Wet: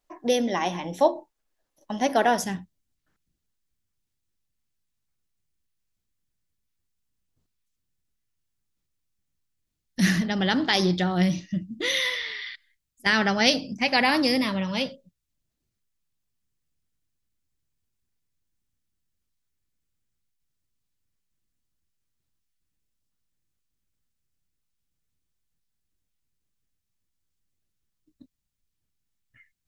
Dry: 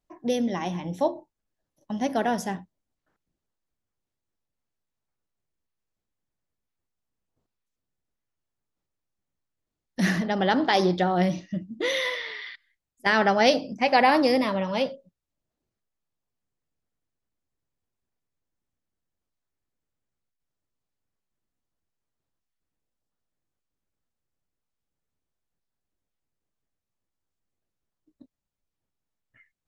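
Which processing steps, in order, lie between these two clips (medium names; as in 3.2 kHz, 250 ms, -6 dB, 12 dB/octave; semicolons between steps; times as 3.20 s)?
peaking EQ 110 Hz -13 dB 2.5 oct, from 2.44 s 650 Hz; trim +6.5 dB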